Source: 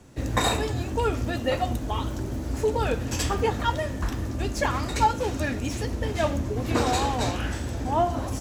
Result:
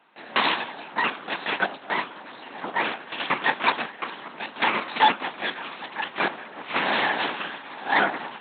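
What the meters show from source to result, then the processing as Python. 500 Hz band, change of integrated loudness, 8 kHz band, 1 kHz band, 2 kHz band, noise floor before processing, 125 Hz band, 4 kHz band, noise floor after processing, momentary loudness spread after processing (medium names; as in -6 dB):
-6.0 dB, +1.0 dB, under -40 dB, +2.0 dB, +9.0 dB, -33 dBFS, -20.5 dB, +4.5 dB, -44 dBFS, 13 LU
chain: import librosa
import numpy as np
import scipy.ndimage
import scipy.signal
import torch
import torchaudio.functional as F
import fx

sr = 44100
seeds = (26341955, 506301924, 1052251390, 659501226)

p1 = fx.low_shelf_res(x, sr, hz=590.0, db=-13.5, q=1.5)
p2 = p1 + fx.echo_thinned(p1, sr, ms=951, feedback_pct=40, hz=760.0, wet_db=-13.5, dry=0)
p3 = fx.cheby_harmonics(p2, sr, harmonics=(8,), levels_db=(-8,), full_scale_db=-9.0)
p4 = fx.lpc_vocoder(p3, sr, seeds[0], excitation='whisper', order=8)
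y = scipy.signal.sosfilt(scipy.signal.butter(4, 220.0, 'highpass', fs=sr, output='sos'), p4)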